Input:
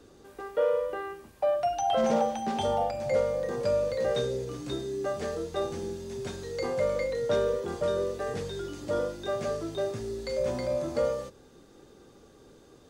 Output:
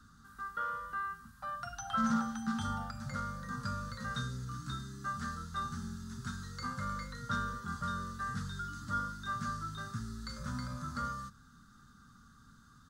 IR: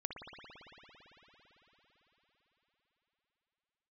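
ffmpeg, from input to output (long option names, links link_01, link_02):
-af "firequalizer=gain_entry='entry(230,0);entry(340,-27);entry(590,-29);entry(1300,10);entry(2300,-17);entry(3900,-4)':delay=0.05:min_phase=1"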